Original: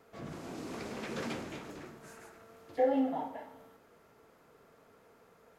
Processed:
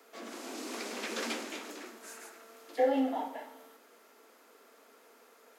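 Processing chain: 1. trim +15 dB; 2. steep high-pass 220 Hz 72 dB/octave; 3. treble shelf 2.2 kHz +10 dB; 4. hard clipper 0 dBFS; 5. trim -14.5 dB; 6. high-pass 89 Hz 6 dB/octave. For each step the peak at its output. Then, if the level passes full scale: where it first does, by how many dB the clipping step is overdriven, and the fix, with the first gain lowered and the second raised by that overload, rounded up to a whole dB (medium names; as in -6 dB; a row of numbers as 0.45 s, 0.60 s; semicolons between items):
-2.5 dBFS, -2.5 dBFS, -2.0 dBFS, -2.0 dBFS, -16.5 dBFS, -17.0 dBFS; nothing clips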